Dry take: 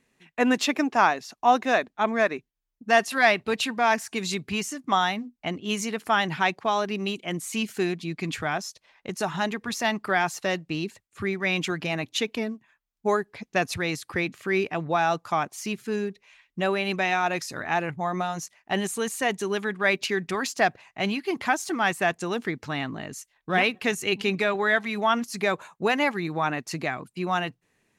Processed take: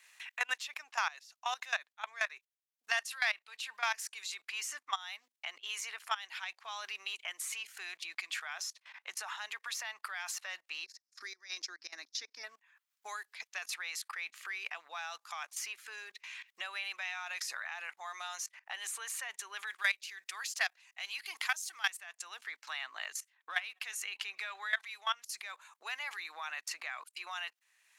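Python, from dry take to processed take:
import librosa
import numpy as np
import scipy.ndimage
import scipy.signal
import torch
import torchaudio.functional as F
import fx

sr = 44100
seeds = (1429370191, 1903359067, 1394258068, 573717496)

y = fx.curve_eq(x, sr, hz=(110.0, 190.0, 280.0, 440.0, 790.0, 1200.0, 1800.0, 2900.0, 5300.0, 7900.0), db=(0, -13, 0, -15, -25, -23, -19, -27, 5, -17), at=(10.84, 12.43), fade=0.02)
y = fx.high_shelf(y, sr, hz=3400.0, db=10.0, at=(19.67, 21.9))
y = fx.level_steps(y, sr, step_db=20)
y = scipy.signal.sosfilt(scipy.signal.bessel(4, 1500.0, 'highpass', norm='mag', fs=sr, output='sos'), y)
y = fx.band_squash(y, sr, depth_pct=70)
y = y * librosa.db_to_amplitude(1.0)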